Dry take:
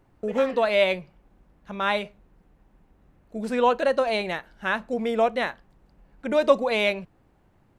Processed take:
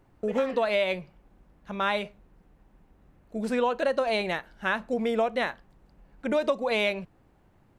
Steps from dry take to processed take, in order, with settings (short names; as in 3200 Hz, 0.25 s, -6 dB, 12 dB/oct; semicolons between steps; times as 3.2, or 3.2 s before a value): compressor 12:1, threshold -21 dBFS, peak gain reduction 10.5 dB